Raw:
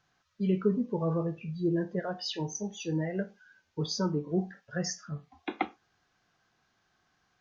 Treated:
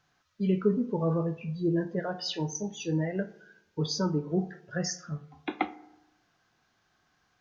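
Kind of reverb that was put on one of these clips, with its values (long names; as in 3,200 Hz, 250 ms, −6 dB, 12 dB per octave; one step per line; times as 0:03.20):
feedback delay network reverb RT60 0.95 s, low-frequency decay 1.05×, high-frequency decay 0.45×, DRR 15 dB
level +1.5 dB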